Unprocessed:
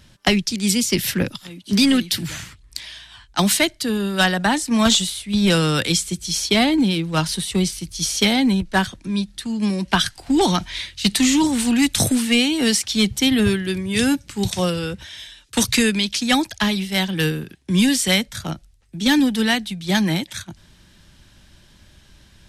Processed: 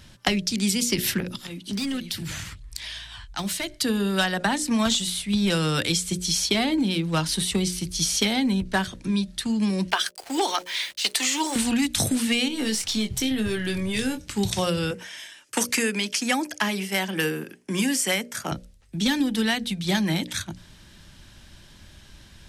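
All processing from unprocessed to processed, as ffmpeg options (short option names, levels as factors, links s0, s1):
-filter_complex "[0:a]asettb=1/sr,asplit=3[s0][s1][s2];[s0]atrim=end=1.204[s3];[s1]atrim=start=1.2:end=3.74,asetpts=PTS-STARTPTS,afade=t=in:d=0.004:c=qsin,afade=t=out:st=2.536:d=0.004:c=qsin,asubboost=boost=3:cutoff=150,asoftclip=type=hard:threshold=0.266,acompressor=threshold=0.0251:ratio=3:attack=3.2:release=140:knee=1:detection=peak[s4];[s2]atrim=start=3.736[s5];[s3][s4]acrossfade=d=0.004:c1=hsin:c2=qsin[s6];[s6][s5]acrossfade=d=0.004:c1=qsin:c2=hsin,asettb=1/sr,asplit=3[s7][s8][s9];[s7]atrim=end=9.904[s10];[s8]atrim=start=9.9:end=11.56,asetpts=PTS-STARTPTS,afade=t=in:d=0.004:c=qsin,afade=t=out:st=1.656:d=0.004:c=qsin,highpass=f=410:w=0.5412,highpass=f=410:w=1.3066,acrusher=bits=6:mix=0:aa=0.5,bandreject=f=3800:w=20[s11];[s9]atrim=start=11.556[s12];[s10][s11]acrossfade=d=0.004:c1=hsin:c2=qsin[s13];[s13][s12]acrossfade=d=0.004:c1=qsin:c2=hsin,asettb=1/sr,asplit=3[s14][s15][s16];[s14]atrim=end=12.484[s17];[s15]atrim=start=12.48:end=14.27,asetpts=PTS-STARTPTS,afade=t=in:d=0.004:c=qsin,afade=t=out:st=1.786:d=0.004:c=qsin,aeval=exprs='if(lt(val(0),0),0.708*val(0),val(0))':c=same,acompressor=threshold=0.0631:ratio=4:attack=3.2:release=140:knee=1:detection=peak,asplit=2[s18][s19];[s19]adelay=23,volume=0.447[s20];[s18][s20]amix=inputs=2:normalize=0,atrim=end_sample=78939[s21];[s16]atrim=start=14.266[s22];[s17][s21]acrossfade=d=0.004:c1=hsin:c2=qsin[s23];[s23][s22]acrossfade=d=0.004:c1=qsin:c2=hsin,asettb=1/sr,asplit=3[s24][s25][s26];[s24]atrim=end=14.914[s27];[s25]atrim=start=14.91:end=18.52,asetpts=PTS-STARTPTS,afade=t=in:d=0.004:c=qsin,afade=t=out:st=3.606:d=0.004:c=qsin,highpass=280,equalizer=f=3800:t=o:w=0.39:g=-13.5[s28];[s26]atrim=start=18.516[s29];[s27][s28]acrossfade=d=0.004:c1=hsin:c2=qsin[s30];[s30][s29]acrossfade=d=0.004:c1=qsin:c2=hsin,bandreject=f=60:t=h:w=6,bandreject=f=120:t=h:w=6,bandreject=f=180:t=h:w=6,bandreject=f=240:t=h:w=6,bandreject=f=300:t=h:w=6,bandreject=f=360:t=h:w=6,bandreject=f=420:t=h:w=6,bandreject=f=480:t=h:w=6,bandreject=f=540:t=h:w=6,bandreject=f=600:t=h:w=6,acompressor=threshold=0.0708:ratio=4,volume=1.26"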